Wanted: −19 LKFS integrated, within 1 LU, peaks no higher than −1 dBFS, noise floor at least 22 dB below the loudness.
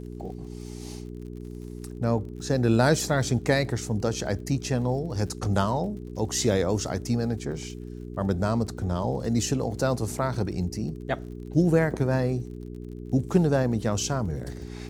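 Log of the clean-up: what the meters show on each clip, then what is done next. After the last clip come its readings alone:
crackle rate 38 per second; mains hum 60 Hz; hum harmonics up to 420 Hz; level of the hum −36 dBFS; integrated loudness −26.5 LKFS; sample peak −7.0 dBFS; target loudness −19.0 LKFS
→ click removal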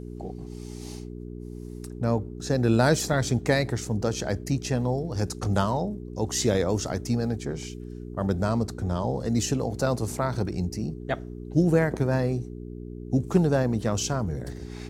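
crackle rate 0.20 per second; mains hum 60 Hz; hum harmonics up to 420 Hz; level of the hum −36 dBFS
→ hum removal 60 Hz, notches 7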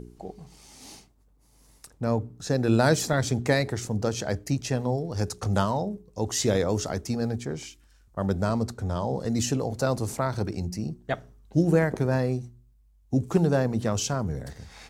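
mains hum none found; integrated loudness −27.0 LKFS; sample peak −7.0 dBFS; target loudness −19.0 LKFS
→ level +8 dB
brickwall limiter −1 dBFS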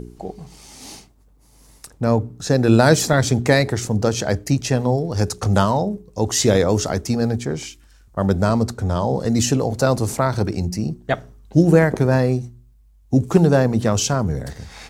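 integrated loudness −19.0 LKFS; sample peak −1.0 dBFS; background noise floor −52 dBFS

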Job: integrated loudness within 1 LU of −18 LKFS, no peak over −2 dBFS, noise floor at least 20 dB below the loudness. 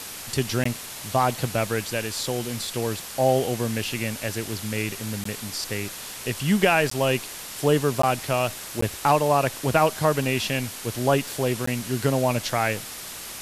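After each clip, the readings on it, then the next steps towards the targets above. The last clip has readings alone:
number of dropouts 6; longest dropout 14 ms; background noise floor −37 dBFS; target noise floor −45 dBFS; integrated loudness −25.0 LKFS; sample peak −7.0 dBFS; target loudness −18.0 LKFS
→ repair the gap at 0:00.64/0:05.24/0:06.90/0:08.02/0:08.81/0:11.66, 14 ms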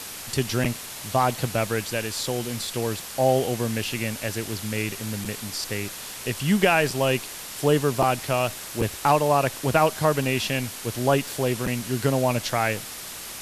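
number of dropouts 0; background noise floor −37 dBFS; target noise floor −45 dBFS
→ noise reduction from a noise print 8 dB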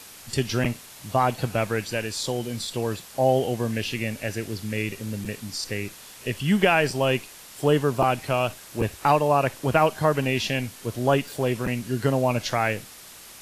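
background noise floor −45 dBFS; integrated loudness −25.0 LKFS; sample peak −7.0 dBFS; target loudness −18.0 LKFS
→ level +7 dB
brickwall limiter −2 dBFS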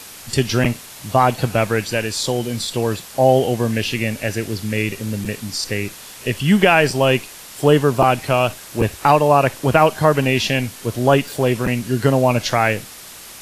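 integrated loudness −18.0 LKFS; sample peak −2.0 dBFS; background noise floor −38 dBFS

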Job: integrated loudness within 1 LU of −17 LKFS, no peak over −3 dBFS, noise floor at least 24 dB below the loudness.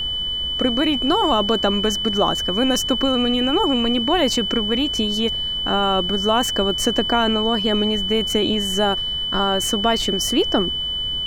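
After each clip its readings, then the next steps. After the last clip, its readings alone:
interfering tone 3,000 Hz; level of the tone −22 dBFS; background noise floor −25 dBFS; target noise floor −43 dBFS; integrated loudness −19.0 LKFS; sample peak −4.5 dBFS; target loudness −17.0 LKFS
→ notch filter 3,000 Hz, Q 30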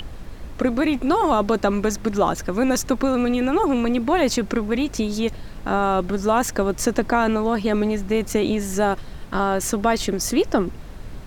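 interfering tone none found; background noise floor −36 dBFS; target noise floor −46 dBFS
→ noise reduction from a noise print 10 dB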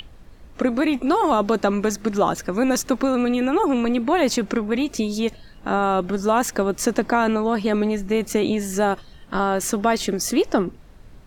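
background noise floor −45 dBFS; target noise floor −46 dBFS
→ noise reduction from a noise print 6 dB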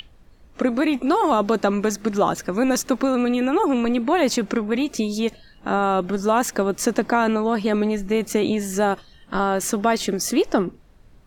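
background noise floor −51 dBFS; integrated loudness −21.5 LKFS; sample peak −6.0 dBFS; target loudness −17.0 LKFS
→ level +4.5 dB
brickwall limiter −3 dBFS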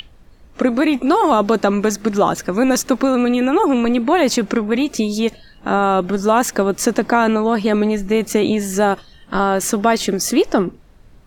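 integrated loudness −17.0 LKFS; sample peak −3.0 dBFS; background noise floor −46 dBFS

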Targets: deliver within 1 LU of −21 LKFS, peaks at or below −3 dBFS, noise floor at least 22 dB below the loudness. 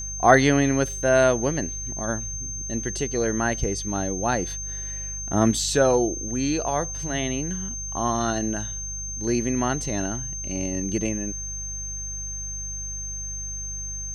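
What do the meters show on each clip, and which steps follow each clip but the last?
mains hum 50 Hz; hum harmonics up to 150 Hz; level of the hum −34 dBFS; interfering tone 6,300 Hz; level of the tone −31 dBFS; integrated loudness −25.0 LKFS; sample peak −2.5 dBFS; target loudness −21.0 LKFS
→ hum removal 50 Hz, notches 3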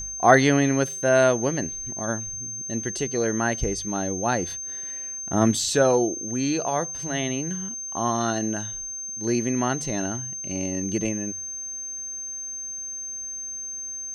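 mains hum none found; interfering tone 6,300 Hz; level of the tone −31 dBFS
→ notch filter 6,300 Hz, Q 30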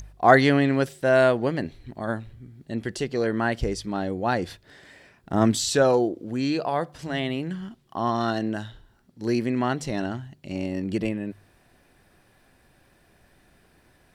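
interfering tone none found; integrated loudness −24.5 LKFS; sample peak −2.5 dBFS; target loudness −21.0 LKFS
→ level +3.5 dB
brickwall limiter −3 dBFS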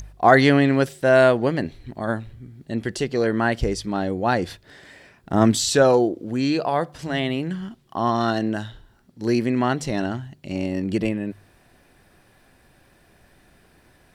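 integrated loudness −21.5 LKFS; sample peak −3.0 dBFS; background noise floor −57 dBFS

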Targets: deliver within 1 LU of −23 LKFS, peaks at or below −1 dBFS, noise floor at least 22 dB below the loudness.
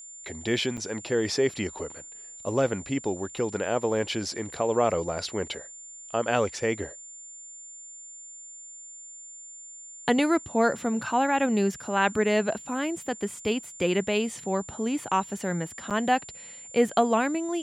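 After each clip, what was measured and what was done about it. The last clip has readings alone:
number of dropouts 2; longest dropout 7.2 ms; interfering tone 7,200 Hz; level of the tone −42 dBFS; integrated loudness −27.5 LKFS; sample peak −8.5 dBFS; target loudness −23.0 LKFS
→ repair the gap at 0:00.77/0:15.90, 7.2 ms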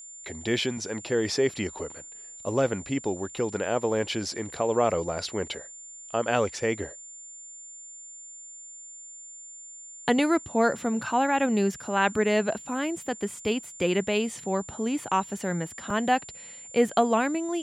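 number of dropouts 0; interfering tone 7,200 Hz; level of the tone −42 dBFS
→ notch filter 7,200 Hz, Q 30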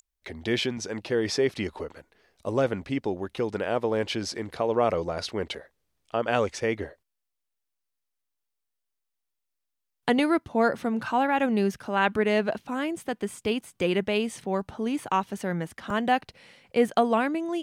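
interfering tone none found; integrated loudness −27.5 LKFS; sample peak −8.5 dBFS; target loudness −23.0 LKFS
→ level +4.5 dB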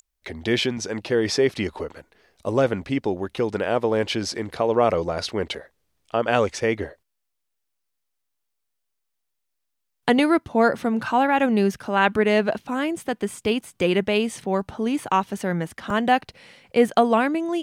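integrated loudness −23.0 LKFS; sample peak −4.0 dBFS; background noise floor −77 dBFS

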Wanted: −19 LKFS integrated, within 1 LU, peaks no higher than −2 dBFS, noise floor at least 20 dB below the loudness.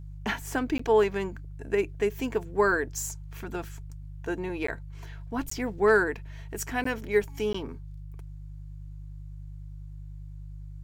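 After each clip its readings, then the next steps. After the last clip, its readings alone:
number of dropouts 5; longest dropout 14 ms; mains hum 50 Hz; hum harmonics up to 150 Hz; level of the hum −39 dBFS; integrated loudness −29.0 LKFS; sample peak −12.0 dBFS; target loudness −19.0 LKFS
→ repair the gap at 0:00.78/0:04.67/0:05.50/0:06.84/0:07.53, 14 ms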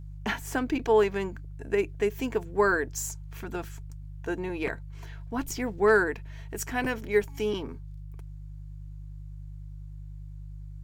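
number of dropouts 0; mains hum 50 Hz; hum harmonics up to 150 Hz; level of the hum −39 dBFS
→ hum removal 50 Hz, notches 3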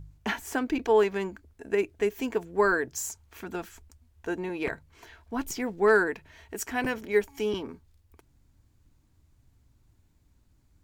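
mains hum none found; integrated loudness −28.5 LKFS; sample peak −12.0 dBFS; target loudness −19.0 LKFS
→ level +9.5 dB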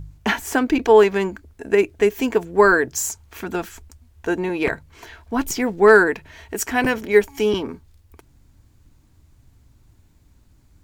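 integrated loudness −19.0 LKFS; sample peak −2.5 dBFS; background noise floor −56 dBFS

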